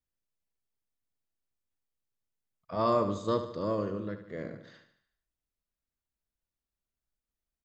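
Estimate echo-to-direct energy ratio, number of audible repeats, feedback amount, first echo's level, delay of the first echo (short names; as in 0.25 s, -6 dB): -9.0 dB, 5, 52%, -10.5 dB, 74 ms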